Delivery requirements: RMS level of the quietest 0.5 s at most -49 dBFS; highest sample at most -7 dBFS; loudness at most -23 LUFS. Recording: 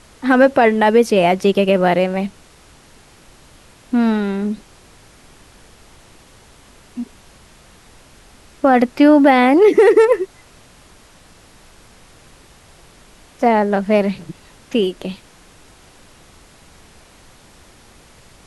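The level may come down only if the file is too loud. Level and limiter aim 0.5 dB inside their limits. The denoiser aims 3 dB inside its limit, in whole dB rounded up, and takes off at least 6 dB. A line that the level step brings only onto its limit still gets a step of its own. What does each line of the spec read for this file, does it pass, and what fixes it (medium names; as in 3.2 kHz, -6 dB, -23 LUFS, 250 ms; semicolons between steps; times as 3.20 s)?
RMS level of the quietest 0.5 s -47 dBFS: fail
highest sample -2.5 dBFS: fail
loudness -14.5 LUFS: fail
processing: trim -9 dB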